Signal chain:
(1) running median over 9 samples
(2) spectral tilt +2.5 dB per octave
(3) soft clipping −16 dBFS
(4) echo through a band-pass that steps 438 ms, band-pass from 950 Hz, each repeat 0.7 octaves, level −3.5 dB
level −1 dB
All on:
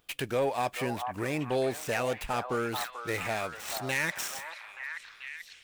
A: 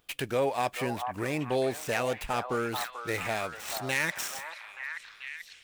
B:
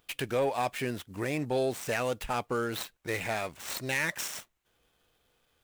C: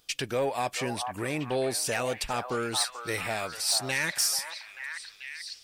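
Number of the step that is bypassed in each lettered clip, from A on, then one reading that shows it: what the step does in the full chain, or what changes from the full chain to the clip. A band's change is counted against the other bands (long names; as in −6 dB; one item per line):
3, distortion level −23 dB
4, echo-to-direct ratio −5.5 dB to none audible
1, 8 kHz band +10.0 dB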